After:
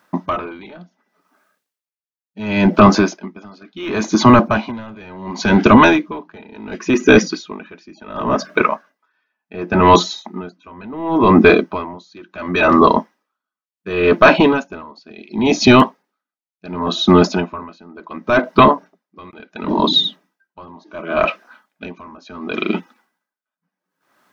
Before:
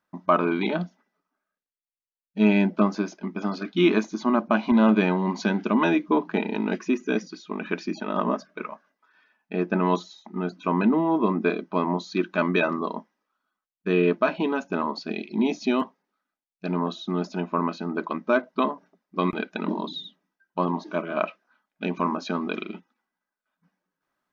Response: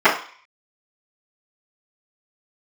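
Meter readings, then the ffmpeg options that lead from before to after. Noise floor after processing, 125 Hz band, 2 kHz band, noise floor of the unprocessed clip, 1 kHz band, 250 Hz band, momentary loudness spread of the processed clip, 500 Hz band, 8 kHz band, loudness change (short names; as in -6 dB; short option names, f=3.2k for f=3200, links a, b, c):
under -85 dBFS, +9.5 dB, +11.0 dB, under -85 dBFS, +11.5 dB, +7.5 dB, 21 LU, +9.5 dB, n/a, +11.0 dB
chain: -af "highpass=f=180:p=1,apsyclip=23.5dB,aeval=exprs='val(0)*pow(10,-30*(0.5-0.5*cos(2*PI*0.7*n/s))/20)':c=same,volume=-1.5dB"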